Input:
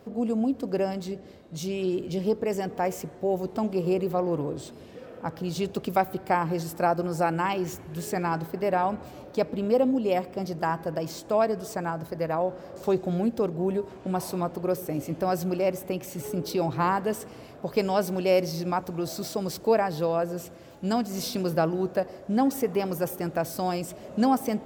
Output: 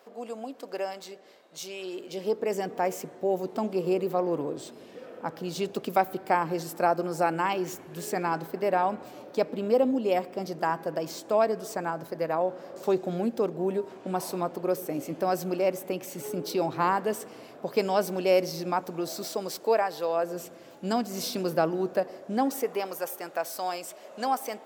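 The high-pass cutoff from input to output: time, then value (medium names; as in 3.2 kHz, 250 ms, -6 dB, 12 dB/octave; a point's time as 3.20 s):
1.88 s 640 Hz
2.59 s 230 Hz
18.94 s 230 Hz
20.02 s 520 Hz
20.43 s 220 Hz
22.15 s 220 Hz
23.01 s 610 Hz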